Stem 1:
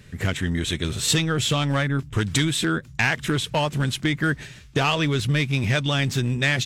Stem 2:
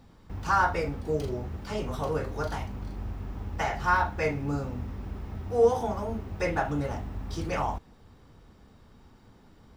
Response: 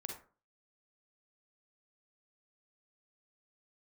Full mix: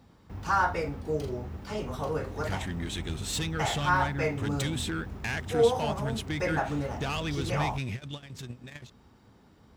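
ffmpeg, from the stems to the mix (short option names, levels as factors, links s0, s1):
-filter_complex "[0:a]acontrast=51,asoftclip=type=tanh:threshold=0.282,adelay=2250,volume=0.188[s0];[1:a]volume=0.841,asplit=2[s1][s2];[s2]apad=whole_len=392491[s3];[s0][s3]sidechaingate=range=0.0224:threshold=0.00224:ratio=16:detection=peak[s4];[s4][s1]amix=inputs=2:normalize=0,highpass=57"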